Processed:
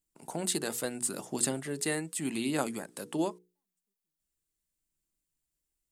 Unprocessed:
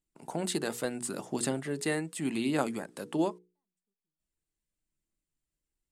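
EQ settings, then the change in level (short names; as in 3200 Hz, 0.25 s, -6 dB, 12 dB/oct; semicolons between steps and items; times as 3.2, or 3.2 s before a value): high shelf 5600 Hz +10.5 dB; -2.0 dB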